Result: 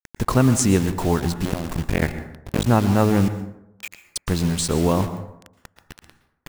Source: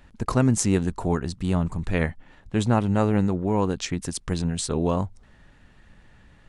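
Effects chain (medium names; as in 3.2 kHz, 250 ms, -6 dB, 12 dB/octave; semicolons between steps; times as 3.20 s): 1.45–2.67 s: cycle switcher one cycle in 2, muted; in parallel at +1 dB: compression 5:1, threshold -38 dBFS, peak gain reduction 20.5 dB; 3.28–4.16 s: on the sum: band-pass filter 2.4 kHz, Q 8.7; bit crusher 6-bit; plate-style reverb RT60 0.81 s, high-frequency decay 0.45×, pre-delay 105 ms, DRR 11 dB; trim +2.5 dB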